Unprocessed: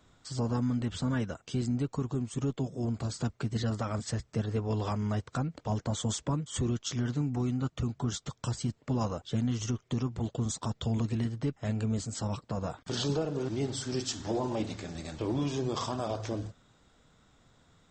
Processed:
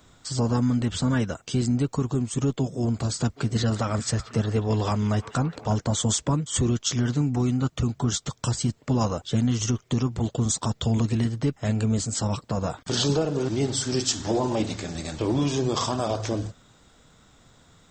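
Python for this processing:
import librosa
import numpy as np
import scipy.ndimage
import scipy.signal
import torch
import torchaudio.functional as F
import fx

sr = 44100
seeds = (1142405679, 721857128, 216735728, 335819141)

y = fx.high_shelf(x, sr, hz=6100.0, db=7.0)
y = fx.echo_stepped(y, sr, ms=179, hz=2700.0, octaves=-0.7, feedback_pct=70, wet_db=-9, at=(3.36, 5.75), fade=0.02)
y = F.gain(torch.from_numpy(y), 7.0).numpy()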